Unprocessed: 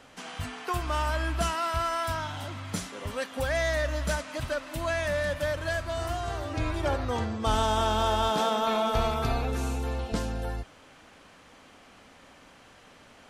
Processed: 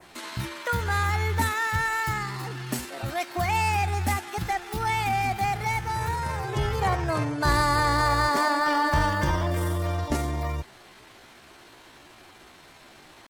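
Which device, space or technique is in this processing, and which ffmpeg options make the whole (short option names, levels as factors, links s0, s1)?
chipmunk voice: -af "asetrate=58866,aresample=44100,atempo=0.749154,adynamicequalizer=threshold=0.00501:dfrequency=4000:dqfactor=0.92:tfrequency=4000:tqfactor=0.92:attack=5:release=100:ratio=0.375:range=2:mode=cutabove:tftype=bell,volume=1.5"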